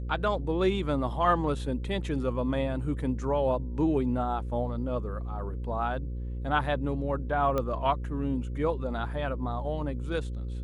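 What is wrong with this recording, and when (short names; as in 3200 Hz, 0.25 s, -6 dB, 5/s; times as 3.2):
buzz 60 Hz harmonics 9 -34 dBFS
7.58 pop -17 dBFS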